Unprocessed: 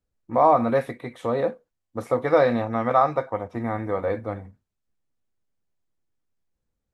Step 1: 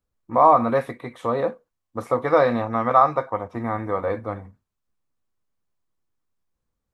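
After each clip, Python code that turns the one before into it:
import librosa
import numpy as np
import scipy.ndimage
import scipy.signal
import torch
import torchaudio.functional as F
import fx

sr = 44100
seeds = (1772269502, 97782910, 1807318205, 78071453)

y = fx.peak_eq(x, sr, hz=1100.0, db=7.0, octaves=0.5)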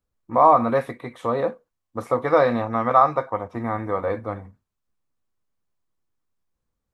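y = x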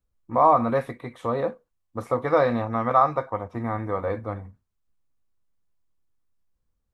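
y = fx.low_shelf(x, sr, hz=97.0, db=9.5)
y = y * librosa.db_to_amplitude(-3.0)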